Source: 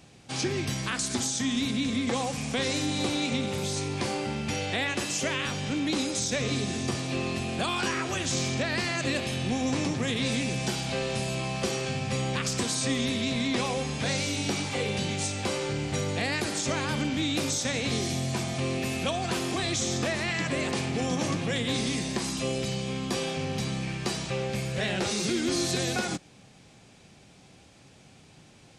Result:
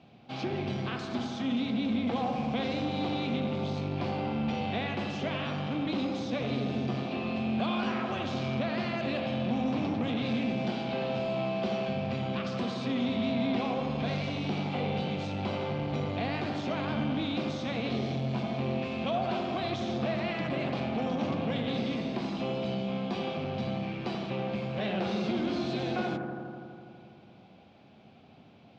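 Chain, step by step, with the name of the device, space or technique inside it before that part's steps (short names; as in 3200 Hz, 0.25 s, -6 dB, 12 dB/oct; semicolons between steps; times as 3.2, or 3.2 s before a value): analogue delay pedal into a guitar amplifier (analogue delay 82 ms, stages 1024, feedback 80%, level -7 dB; tube stage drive 24 dB, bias 0.45; speaker cabinet 94–3700 Hz, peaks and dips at 220 Hz +7 dB, 700 Hz +7 dB, 1800 Hz -7 dB); gain -2 dB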